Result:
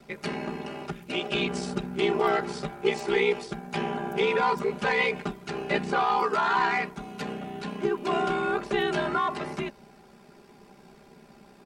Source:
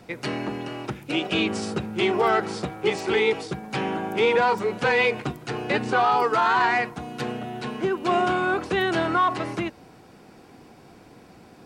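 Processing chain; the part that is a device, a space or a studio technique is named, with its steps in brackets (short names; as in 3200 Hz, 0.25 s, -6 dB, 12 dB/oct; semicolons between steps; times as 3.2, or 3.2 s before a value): ring-modulated robot voice (ring modulator 32 Hz; comb 5 ms, depth 86%); gain -3 dB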